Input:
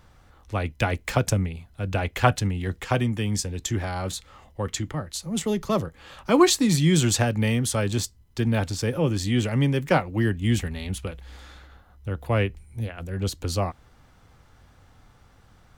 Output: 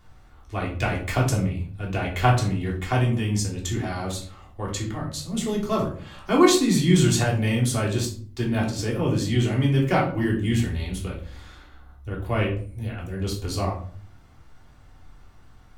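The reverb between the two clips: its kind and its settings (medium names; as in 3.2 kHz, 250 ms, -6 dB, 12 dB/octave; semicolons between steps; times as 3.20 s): simulated room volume 420 m³, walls furnished, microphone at 3.3 m; trim -5 dB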